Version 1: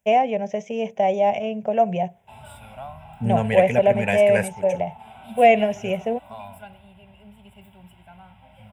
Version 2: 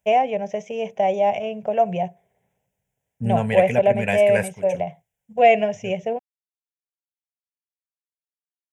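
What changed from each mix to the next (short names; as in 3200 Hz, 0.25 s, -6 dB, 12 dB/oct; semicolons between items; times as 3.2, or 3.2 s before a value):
first voice: add bell 230 Hz -7 dB 0.25 oct; background: muted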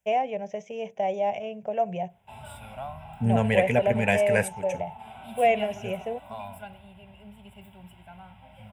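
first voice -7.0 dB; background: unmuted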